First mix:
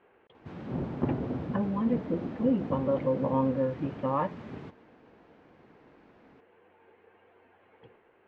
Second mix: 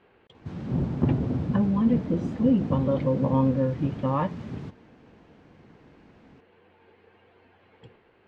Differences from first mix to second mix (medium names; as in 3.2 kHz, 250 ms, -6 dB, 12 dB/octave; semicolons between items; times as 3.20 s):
speech: remove distance through air 240 m; master: add tone controls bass +10 dB, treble +10 dB